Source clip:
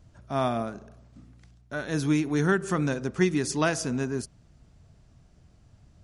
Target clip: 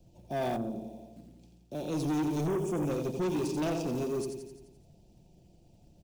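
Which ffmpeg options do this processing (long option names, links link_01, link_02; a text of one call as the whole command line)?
ffmpeg -i in.wav -filter_complex "[0:a]acrossover=split=270|540|3900[link_01][link_02][link_03][link_04];[link_02]aeval=exprs='0.112*sin(PI/2*2*val(0)/0.112)':channel_layout=same[link_05];[link_01][link_05][link_03][link_04]amix=inputs=4:normalize=0,asettb=1/sr,asplit=3[link_06][link_07][link_08];[link_06]atrim=end=3.474[link_09];[link_07]atrim=start=3.47:end=3.96,asetpts=PTS-STARTPTS,afade=type=in:duration=0.004:curve=qsin,afade=type=out:start_time=0.486:duration=0.004:curve=qsin,adynamicsmooth=sensitivity=4:basefreq=2000[link_10];[link_08]atrim=start=3.956[link_11];[link_09][link_10]acrossfade=duration=0.004:curve1=hsin:curve2=qsin[link_12];[link_12][link_11]acrossfade=duration=0.004:curve1=qsin:curve2=hsin,asuperstop=centerf=1500:order=20:qfactor=1.1,acrusher=bits=6:mode=log:mix=0:aa=0.000001,aecho=1:1:5.7:0.41,aecho=1:1:86|172|258|344|430|516|602:0.447|0.259|0.15|0.0872|0.0505|0.0293|0.017,asettb=1/sr,asplit=3[link_13][link_14][link_15];[link_13]atrim=end=0.564[link_16];[link_14]atrim=start=0.56:end=1.75,asetpts=PTS-STARTPTS,afade=type=in:duration=0.004:curve=qsin,afade=type=out:start_time=1.186:duration=0.004:curve=qsin,acrossover=split=450[link_17][link_18];[link_18]acompressor=threshold=-44dB:ratio=3[link_19];[link_17][link_19]amix=inputs=2:normalize=0[link_20];[link_15]atrim=start=1.746[link_21];[link_16][link_20]acrossfade=duration=0.004:curve1=hsin:curve2=qsin[link_22];[link_22][link_21]acrossfade=duration=0.004:curve1=qsin:curve2=hsin,asoftclip=type=tanh:threshold=-22dB,asettb=1/sr,asplit=3[link_23][link_24][link_25];[link_23]atrim=end=2.474[link_26];[link_24]atrim=start=2.47:end=2.91,asetpts=PTS-STARTPTS,afade=type=in:duration=0.004:curve=qsin,afade=type=out:start_time=0.436:duration=0.004:curve=qsin,equalizer=frequency=4100:width=2.9:gain=-14.5[link_27];[link_25]atrim=start=2.906[link_28];[link_26][link_27]acrossfade=duration=0.004:curve1=hsin:curve2=qsin[link_29];[link_29][link_28]acrossfade=duration=0.004:curve1=qsin:curve2=hsin,volume=-5dB" out.wav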